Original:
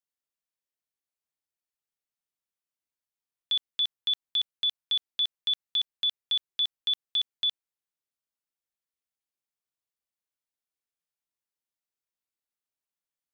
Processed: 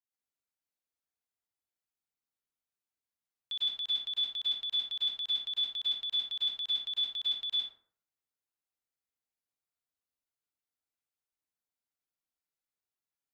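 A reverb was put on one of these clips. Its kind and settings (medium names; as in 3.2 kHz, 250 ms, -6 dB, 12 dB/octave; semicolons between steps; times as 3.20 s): plate-style reverb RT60 0.55 s, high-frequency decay 0.5×, pre-delay 90 ms, DRR -7.5 dB; trim -10.5 dB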